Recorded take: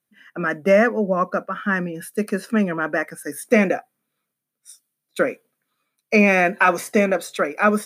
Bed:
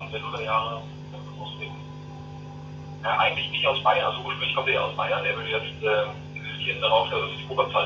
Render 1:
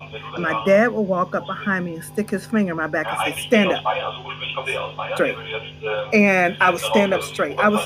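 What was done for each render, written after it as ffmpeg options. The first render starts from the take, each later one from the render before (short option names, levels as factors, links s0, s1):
-filter_complex "[1:a]volume=0.841[s0];[0:a][s0]amix=inputs=2:normalize=0"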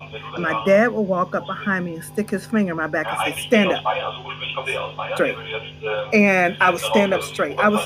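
-af anull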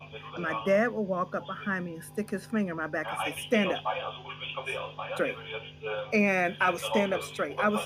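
-af "volume=0.335"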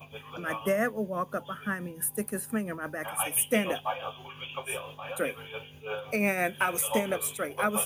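-af "tremolo=f=5.9:d=0.49,aexciter=amount=8.9:drive=5:freq=7500"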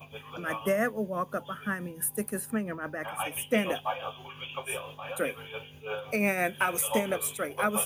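-filter_complex "[0:a]asettb=1/sr,asplit=3[s0][s1][s2];[s0]atrim=end=2.504[s3];[s1]atrim=start=2.5:end=3.58,asetpts=PTS-STARTPTS,afade=t=in:d=0.004:c=qsin,afade=t=out:st=1.076:d=0.004:c=qsin,equalizer=f=11000:w=0.73:g=-11.5[s4];[s2]atrim=start=3.576[s5];[s3][s4]acrossfade=d=0.004:c1=hsin:c2=qsin[s6];[s6][s5]acrossfade=d=0.004:c1=qsin:c2=hsin"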